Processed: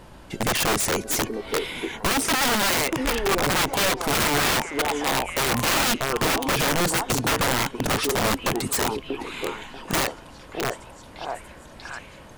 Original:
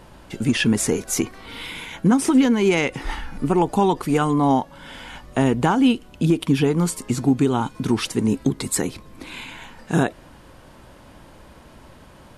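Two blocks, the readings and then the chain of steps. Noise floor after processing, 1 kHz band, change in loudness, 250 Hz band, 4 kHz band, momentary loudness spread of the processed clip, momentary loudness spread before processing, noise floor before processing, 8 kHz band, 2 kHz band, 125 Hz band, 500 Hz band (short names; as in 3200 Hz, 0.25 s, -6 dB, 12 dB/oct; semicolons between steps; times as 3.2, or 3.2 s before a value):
-45 dBFS, +1.0 dB, -2.0 dB, -9.5 dB, +6.5 dB, 15 LU, 18 LU, -47 dBFS, +3.5 dB, +5.5 dB, -7.0 dB, -2.0 dB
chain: delay with a stepping band-pass 0.639 s, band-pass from 530 Hz, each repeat 0.7 oct, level -1 dB; wrapped overs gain 16.5 dB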